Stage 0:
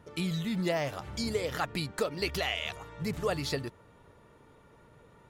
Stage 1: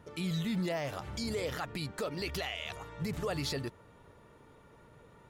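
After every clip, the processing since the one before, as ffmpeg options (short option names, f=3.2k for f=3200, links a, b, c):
-af "alimiter=level_in=2dB:limit=-24dB:level=0:latency=1:release=30,volume=-2dB"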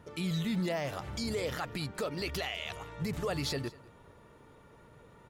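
-af "aecho=1:1:199:0.0841,volume=1dB"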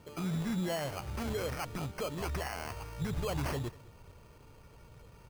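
-af "bandreject=f=1.7k:w=9,asubboost=boost=3.5:cutoff=120,acrusher=samples=12:mix=1:aa=0.000001,volume=-1dB"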